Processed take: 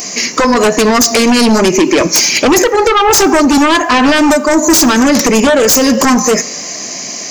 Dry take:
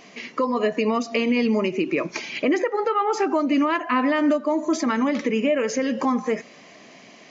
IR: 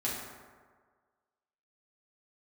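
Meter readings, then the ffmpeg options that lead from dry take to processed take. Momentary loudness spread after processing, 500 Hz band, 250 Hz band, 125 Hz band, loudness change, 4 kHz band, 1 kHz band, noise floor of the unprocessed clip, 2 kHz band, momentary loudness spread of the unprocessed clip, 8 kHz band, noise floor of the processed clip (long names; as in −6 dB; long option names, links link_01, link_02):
7 LU, +12.5 dB, +12.5 dB, +14.5 dB, +14.0 dB, +21.0 dB, +13.5 dB, −48 dBFS, +15.0 dB, 5 LU, can't be measured, −23 dBFS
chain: -filter_complex "[0:a]aexciter=amount=4.4:drive=9.9:freq=4900,aeval=exprs='0.531*sin(PI/2*4.47*val(0)/0.531)':channel_layout=same,asplit=2[link_01][link_02];[1:a]atrim=start_sample=2205,asetrate=61740,aresample=44100[link_03];[link_02][link_03]afir=irnorm=-1:irlink=0,volume=-18.5dB[link_04];[link_01][link_04]amix=inputs=2:normalize=0"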